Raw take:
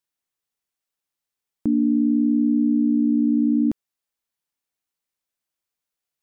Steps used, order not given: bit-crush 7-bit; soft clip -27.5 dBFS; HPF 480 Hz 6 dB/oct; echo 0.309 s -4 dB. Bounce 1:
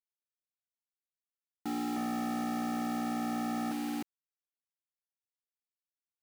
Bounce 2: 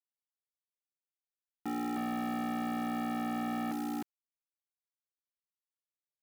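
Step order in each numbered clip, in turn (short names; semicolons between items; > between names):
echo > soft clip > bit-crush > HPF; echo > bit-crush > soft clip > HPF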